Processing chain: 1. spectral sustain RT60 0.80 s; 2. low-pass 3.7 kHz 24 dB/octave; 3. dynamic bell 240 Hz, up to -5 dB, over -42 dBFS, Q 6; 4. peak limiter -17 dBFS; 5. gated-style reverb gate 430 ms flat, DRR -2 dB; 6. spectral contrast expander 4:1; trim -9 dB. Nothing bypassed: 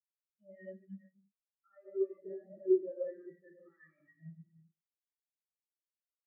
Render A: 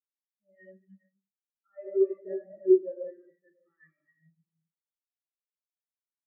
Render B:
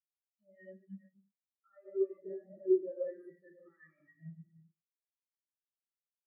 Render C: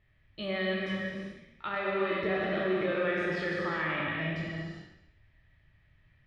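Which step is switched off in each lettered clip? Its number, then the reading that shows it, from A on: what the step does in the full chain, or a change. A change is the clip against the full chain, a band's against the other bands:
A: 4, mean gain reduction 3.0 dB; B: 2, momentary loudness spread change -1 LU; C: 6, crest factor change -8.0 dB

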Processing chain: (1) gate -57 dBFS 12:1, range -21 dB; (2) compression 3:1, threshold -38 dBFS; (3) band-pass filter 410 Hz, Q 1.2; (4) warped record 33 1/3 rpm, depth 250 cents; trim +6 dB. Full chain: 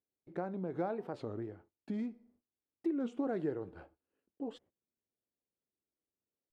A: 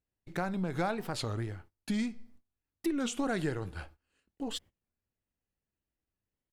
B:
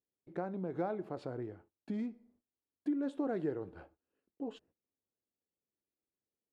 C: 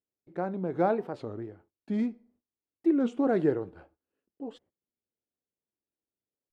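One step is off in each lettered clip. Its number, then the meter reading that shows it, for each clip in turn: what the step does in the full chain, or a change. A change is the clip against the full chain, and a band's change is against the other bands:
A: 3, 2 kHz band +8.5 dB; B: 4, momentary loudness spread change +3 LU; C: 2, mean gain reduction 5.5 dB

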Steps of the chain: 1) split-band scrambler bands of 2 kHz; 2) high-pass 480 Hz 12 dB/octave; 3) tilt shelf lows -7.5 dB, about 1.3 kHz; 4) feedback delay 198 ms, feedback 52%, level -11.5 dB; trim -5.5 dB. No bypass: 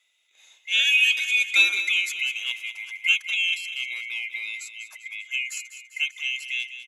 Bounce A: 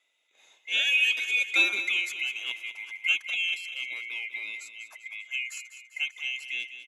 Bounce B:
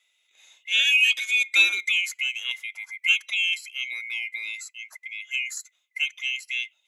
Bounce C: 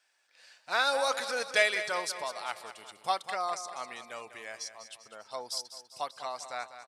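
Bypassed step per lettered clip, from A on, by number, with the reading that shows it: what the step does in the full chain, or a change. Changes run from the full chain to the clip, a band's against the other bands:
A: 3, loudness change -4.5 LU; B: 4, echo-to-direct -10.0 dB to none; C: 1, crest factor change +4.0 dB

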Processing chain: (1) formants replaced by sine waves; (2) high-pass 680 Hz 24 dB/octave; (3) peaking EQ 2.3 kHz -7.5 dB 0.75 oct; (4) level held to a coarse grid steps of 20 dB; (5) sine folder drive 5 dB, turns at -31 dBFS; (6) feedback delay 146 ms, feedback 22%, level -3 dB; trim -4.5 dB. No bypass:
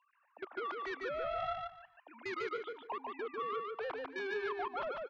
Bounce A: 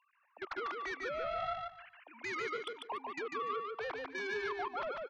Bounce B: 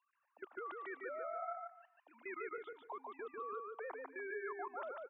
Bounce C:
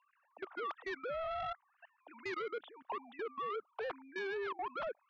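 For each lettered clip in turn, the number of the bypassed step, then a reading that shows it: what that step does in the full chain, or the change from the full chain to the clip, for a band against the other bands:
3, 4 kHz band +2.5 dB; 5, distortion -13 dB; 6, momentary loudness spread change -2 LU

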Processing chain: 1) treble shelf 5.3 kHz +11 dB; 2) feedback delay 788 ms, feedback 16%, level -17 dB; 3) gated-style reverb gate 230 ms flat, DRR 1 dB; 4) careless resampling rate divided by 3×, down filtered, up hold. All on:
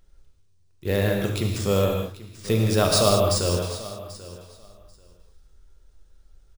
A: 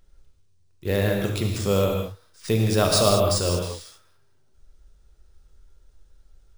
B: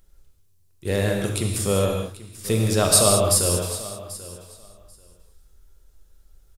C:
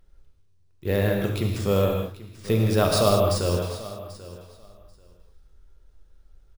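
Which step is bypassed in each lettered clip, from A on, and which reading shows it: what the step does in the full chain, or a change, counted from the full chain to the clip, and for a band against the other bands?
2, momentary loudness spread change -3 LU; 4, 8 kHz band +9.5 dB; 1, 8 kHz band -6.0 dB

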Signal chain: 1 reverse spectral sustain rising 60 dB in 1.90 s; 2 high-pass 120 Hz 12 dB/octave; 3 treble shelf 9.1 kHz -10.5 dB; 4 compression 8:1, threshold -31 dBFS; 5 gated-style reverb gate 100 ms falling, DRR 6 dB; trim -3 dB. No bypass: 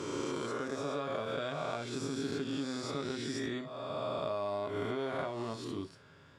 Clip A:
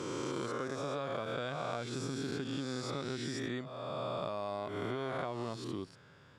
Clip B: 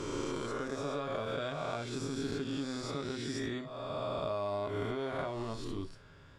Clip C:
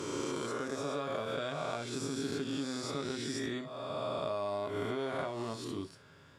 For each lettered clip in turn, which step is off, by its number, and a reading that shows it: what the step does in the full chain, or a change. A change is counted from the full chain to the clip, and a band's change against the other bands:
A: 5, momentary loudness spread change -1 LU; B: 2, 125 Hz band +2.5 dB; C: 3, 8 kHz band +3.5 dB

